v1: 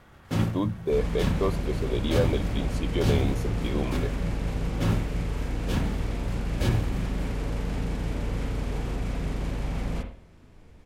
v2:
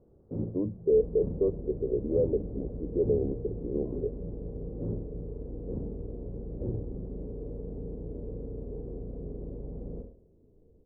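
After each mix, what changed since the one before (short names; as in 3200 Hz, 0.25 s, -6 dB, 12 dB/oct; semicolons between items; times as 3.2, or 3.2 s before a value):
speech +3.5 dB; master: add ladder low-pass 500 Hz, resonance 60%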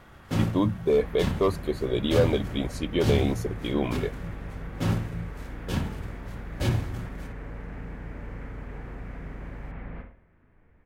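second sound: add ladder low-pass 2200 Hz, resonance 45%; master: remove ladder low-pass 500 Hz, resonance 60%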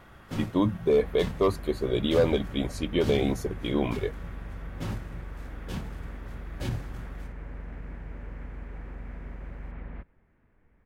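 first sound -4.5 dB; reverb: off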